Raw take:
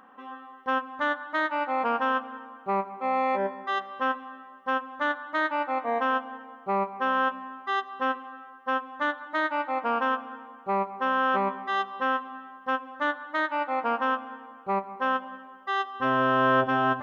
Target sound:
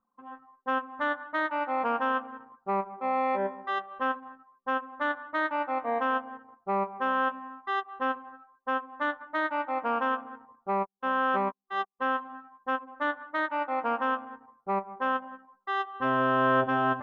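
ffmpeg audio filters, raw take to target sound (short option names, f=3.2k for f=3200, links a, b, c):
-filter_complex "[0:a]asplit=3[a][b][c];[a]afade=t=out:st=10.73:d=0.02[d];[b]agate=range=-25dB:threshold=-26dB:ratio=16:detection=peak,afade=t=in:st=10.73:d=0.02,afade=t=out:st=11.99:d=0.02[e];[c]afade=t=in:st=11.99:d=0.02[f];[d][e][f]amix=inputs=3:normalize=0,anlmdn=0.631,aemphasis=mode=reproduction:type=50kf,volume=-1.5dB"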